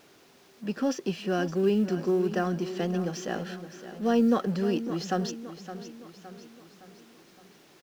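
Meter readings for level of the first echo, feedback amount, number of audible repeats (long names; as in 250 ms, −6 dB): −12.5 dB, 49%, 4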